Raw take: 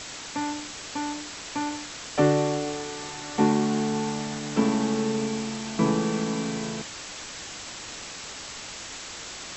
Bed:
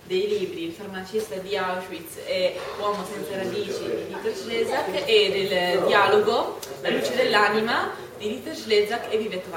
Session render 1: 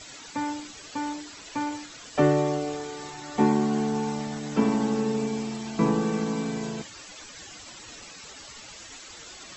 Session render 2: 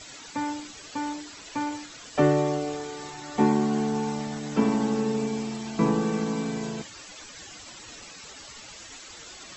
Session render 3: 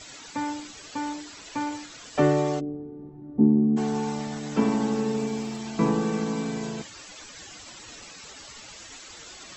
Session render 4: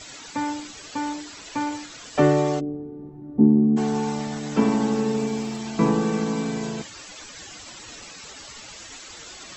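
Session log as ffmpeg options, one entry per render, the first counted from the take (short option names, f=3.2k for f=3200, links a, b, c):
-af "afftdn=nr=12:nf=-39"
-af anull
-filter_complex "[0:a]asplit=3[a][b][c];[a]afade=t=out:st=2.59:d=0.02[d];[b]lowpass=f=260:t=q:w=1.7,afade=t=in:st=2.59:d=0.02,afade=t=out:st=3.76:d=0.02[e];[c]afade=t=in:st=3.76:d=0.02[f];[d][e][f]amix=inputs=3:normalize=0,asettb=1/sr,asplit=3[g][h][i];[g]atrim=end=4.924[j];[h]atrim=start=4.92:end=5.59,asetpts=PTS-STARTPTS,afade=t=in:d=0.004:c=qsin,afade=t=out:st=0.666:d=0.004:c=qsin,aeval=exprs='sgn(val(0))*max(abs(val(0))-0.00126,0)':c=same[k];[i]atrim=start=5.586[l];[j][k]acrossfade=d=0.004:c1=hsin:c2=qsin[m];[m][l]acrossfade=d=0.004:c1=qsin:c2=hsin"
-af "volume=3dB"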